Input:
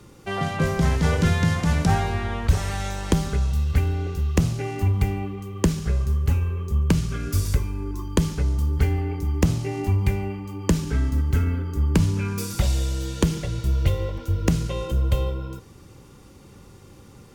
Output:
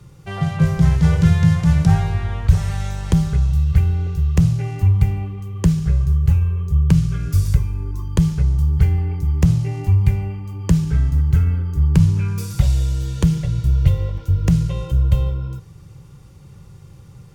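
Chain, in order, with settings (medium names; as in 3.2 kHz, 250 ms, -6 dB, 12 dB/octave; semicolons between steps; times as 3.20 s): resonant low shelf 190 Hz +7 dB, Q 3; trim -2.5 dB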